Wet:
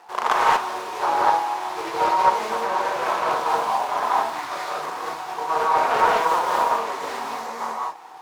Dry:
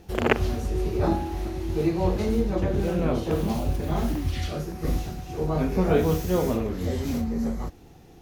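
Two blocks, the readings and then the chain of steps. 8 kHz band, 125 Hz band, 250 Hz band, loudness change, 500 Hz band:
+5.0 dB, under -20 dB, -13.0 dB, +4.0 dB, -0.5 dB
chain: median filter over 15 samples; bell 5900 Hz +4.5 dB 2.9 oct; in parallel at +1 dB: compressor, threshold -32 dBFS, peak gain reduction 16.5 dB; on the sum: resonant high-pass 980 Hz, resonance Q 4.9; soft clip -10.5 dBFS, distortion -16 dB; non-linear reverb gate 0.26 s rising, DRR -4.5 dB; Doppler distortion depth 0.24 ms

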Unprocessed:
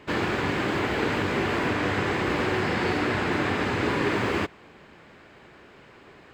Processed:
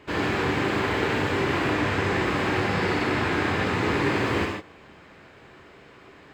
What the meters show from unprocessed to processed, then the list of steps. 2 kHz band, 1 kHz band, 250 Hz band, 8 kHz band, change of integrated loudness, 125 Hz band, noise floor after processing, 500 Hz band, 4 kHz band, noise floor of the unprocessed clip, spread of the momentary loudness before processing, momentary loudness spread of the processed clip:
+1.5 dB, +1.5 dB, +1.0 dB, +1.5 dB, +1.0 dB, +2.5 dB, -50 dBFS, +1.0 dB, +1.0 dB, -51 dBFS, 1 LU, 2 LU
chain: non-linear reverb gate 0.17 s flat, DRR -0.5 dB; gain -2 dB

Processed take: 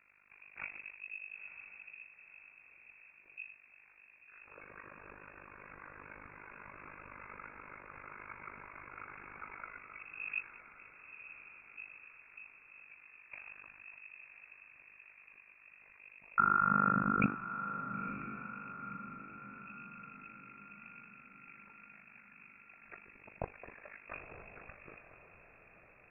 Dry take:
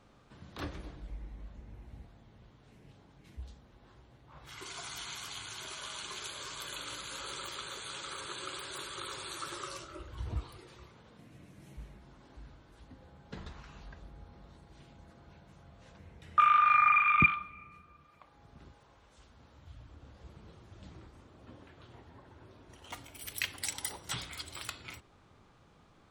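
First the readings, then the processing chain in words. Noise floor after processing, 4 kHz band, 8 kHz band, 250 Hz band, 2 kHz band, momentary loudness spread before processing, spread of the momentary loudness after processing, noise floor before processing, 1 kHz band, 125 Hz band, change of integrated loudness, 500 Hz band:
-62 dBFS, under -35 dB, under -35 dB, +4.5 dB, -6.0 dB, 27 LU, 18 LU, -62 dBFS, -6.0 dB, -3.0 dB, -8.0 dB, -1.0 dB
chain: AM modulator 50 Hz, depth 90%; diffused feedback echo 0.976 s, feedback 52%, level -10.5 dB; inverted band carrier 2600 Hz; gain -1.5 dB

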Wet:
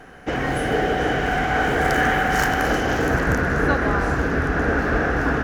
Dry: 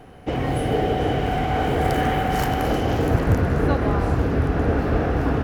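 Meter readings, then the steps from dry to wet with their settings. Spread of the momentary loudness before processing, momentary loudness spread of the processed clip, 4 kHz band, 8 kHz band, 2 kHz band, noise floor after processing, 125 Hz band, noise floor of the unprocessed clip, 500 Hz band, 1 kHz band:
2 LU, 3 LU, +2.5 dB, +5.5 dB, +10.0 dB, -29 dBFS, -4.0 dB, -29 dBFS, +0.5 dB, +2.0 dB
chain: fifteen-band EQ 100 Hz -9 dB, 1600 Hz +12 dB, 6300 Hz +8 dB

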